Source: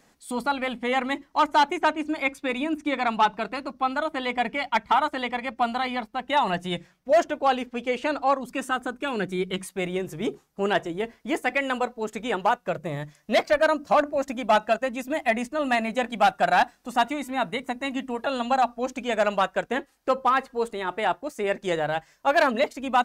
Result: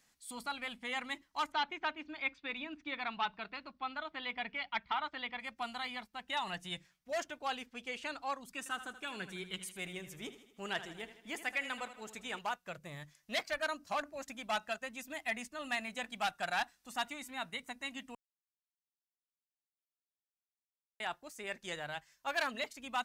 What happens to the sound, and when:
1.52–5.4 LPF 4300 Hz 24 dB/oct
8.58–12.39 feedback echo 79 ms, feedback 54%, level -12.5 dB
18.15–21 mute
whole clip: passive tone stack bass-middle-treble 5-5-5

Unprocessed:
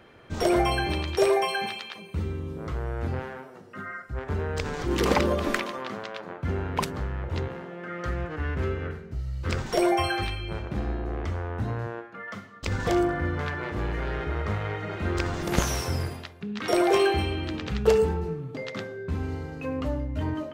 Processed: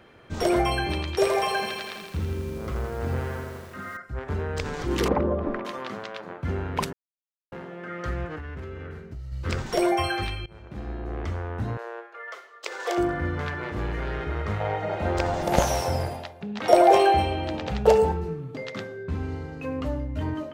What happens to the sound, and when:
1.15–3.97 lo-fi delay 82 ms, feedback 80%, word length 8-bit, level -6 dB
5.08–5.65 LPF 1000 Hz
6.93–7.52 mute
8.36–9.32 compressor, threshold -33 dBFS
10.46–11.22 fade in, from -21 dB
11.77–12.98 steep high-pass 380 Hz 48 dB/oct
14.6–18.12 band shelf 680 Hz +11 dB 1 oct
19.03–19.61 high shelf 9100 Hz -8.5 dB

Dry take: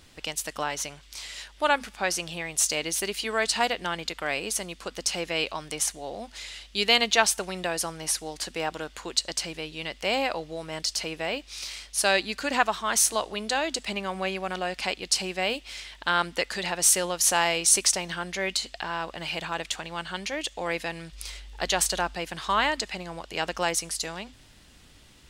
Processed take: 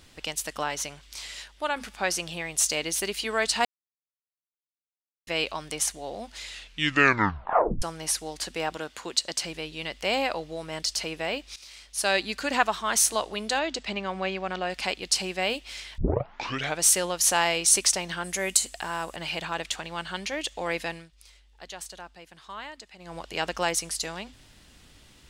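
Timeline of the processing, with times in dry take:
1.32–1.76 fade out, to -7.5 dB
3.65–5.27 mute
6.5 tape stop 1.32 s
8.77–9.45 HPF 96 Hz
11.56–12.26 fade in, from -15.5 dB
13.59–14.7 running mean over 4 samples
15.98 tape start 0.84 s
18.24–19.16 resonant high shelf 6100 Hz +12.5 dB, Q 1.5
20.9–23.17 dip -15.5 dB, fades 0.19 s

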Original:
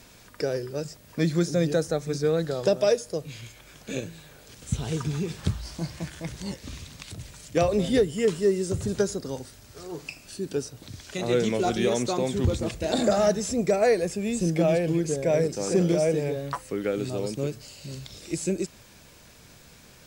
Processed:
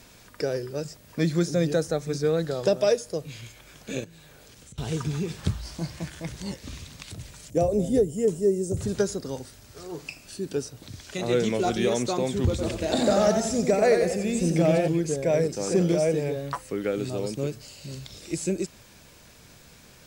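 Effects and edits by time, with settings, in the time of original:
4.04–4.78 compressor, threshold -46 dBFS
7.5–8.77 band shelf 2200 Hz -14.5 dB 2.6 oct
12.49–14.88 warbling echo 91 ms, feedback 46%, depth 114 cents, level -6 dB

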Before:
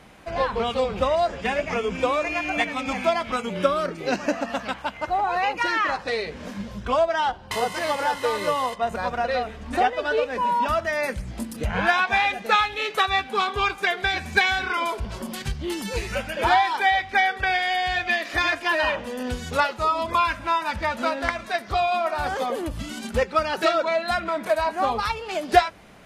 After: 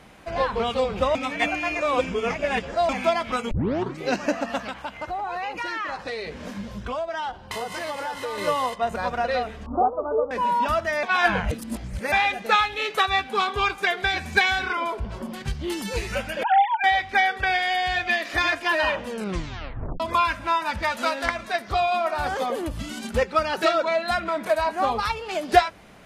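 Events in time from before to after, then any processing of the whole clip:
1.15–2.89 reverse
3.51 tape start 0.49 s
4.64–8.38 compressor 3:1, threshold -28 dBFS
9.66–10.31 steep low-pass 1300 Hz 96 dB/oct
11.03–12.12 reverse
14.73–15.48 high shelf 3000 Hz -11 dB
16.43–16.84 sine-wave speech
19.09 tape stop 0.91 s
20.83–21.26 tilt +2 dB/oct

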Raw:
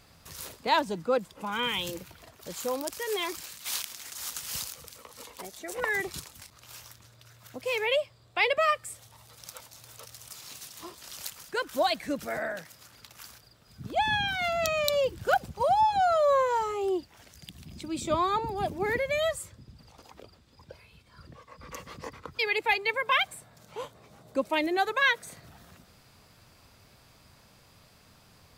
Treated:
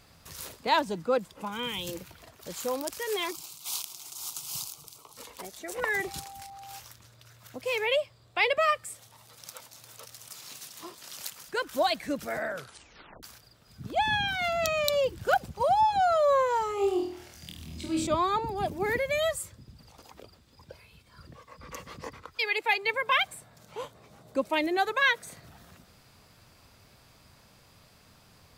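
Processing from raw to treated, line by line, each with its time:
1.48–1.88 bell 1500 Hz -7.5 dB 2.2 oct
3.31–5.17 fixed phaser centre 350 Hz, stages 8
5.92–6.78 whine 790 Hz -43 dBFS
8.84–11.45 HPF 120 Hz
12.49 tape stop 0.74 s
16.75–18.07 flutter echo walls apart 4.3 m, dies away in 0.56 s
18.71–21.59 high shelf 8700 Hz +6 dB
22.24–22.82 bell 190 Hz -> 60 Hz -14 dB 2.6 oct

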